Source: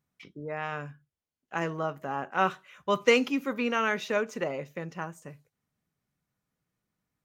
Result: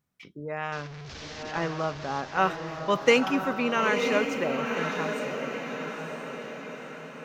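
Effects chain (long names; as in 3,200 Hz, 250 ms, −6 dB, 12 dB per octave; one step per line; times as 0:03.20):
0:00.72–0:02.21: linear delta modulator 32 kbit/s, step −36.5 dBFS
feedback delay with all-pass diffusion 968 ms, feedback 53%, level −5 dB
level +1.5 dB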